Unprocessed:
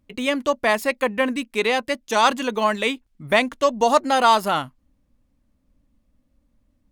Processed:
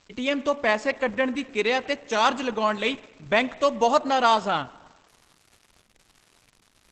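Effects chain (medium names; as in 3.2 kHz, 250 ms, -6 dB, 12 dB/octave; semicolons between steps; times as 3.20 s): spring tank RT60 1.4 s, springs 36/42/49 ms, chirp 60 ms, DRR 17 dB; crackle 300 per s -37 dBFS; trim -2.5 dB; Opus 12 kbps 48 kHz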